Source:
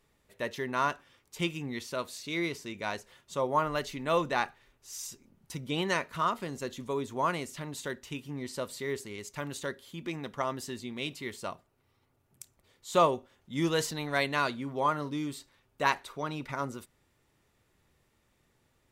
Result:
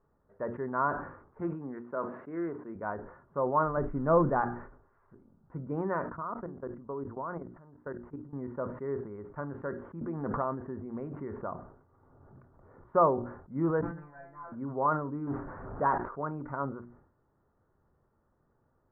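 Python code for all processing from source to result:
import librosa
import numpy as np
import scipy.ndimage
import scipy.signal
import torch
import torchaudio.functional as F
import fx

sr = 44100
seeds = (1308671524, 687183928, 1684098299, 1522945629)

y = fx.chain(x, sr, fx.highpass(hz=200.0, slope=12),
    fx.doppler_dist(depth_ms=0.14), at=(1.4, 2.76))
y = fx.chain(y, sr, fx.crossing_spikes(level_db=-29.0),
    fx.tilt_eq(slope=-2.5),
    fx.transient(attack_db=4, sustain_db=0), at=(3.77, 4.42))
y = fx.chain(y, sr, fx.lowpass(hz=2100.0, slope=12),
    fx.level_steps(step_db=18), at=(6.09, 8.33))
y = fx.chain(y, sr, fx.high_shelf(hz=3700.0, db=-8.5),
    fx.pre_swell(db_per_s=27.0), at=(10.01, 12.89))
y = fx.chain(y, sr, fx.cvsd(bps=32000),
    fx.overload_stage(gain_db=27.0),
    fx.comb_fb(f0_hz=170.0, decay_s=0.39, harmonics='all', damping=0.0, mix_pct=100), at=(13.81, 14.52))
y = fx.chain(y, sr, fx.zero_step(step_db=-33.5),
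    fx.high_shelf(hz=3200.0, db=-8.0),
    fx.transient(attack_db=0, sustain_db=6), at=(15.27, 15.98))
y = scipy.signal.sosfilt(scipy.signal.butter(8, 1500.0, 'lowpass', fs=sr, output='sos'), y)
y = fx.hum_notches(y, sr, base_hz=60, count=6)
y = fx.sustainer(y, sr, db_per_s=85.0)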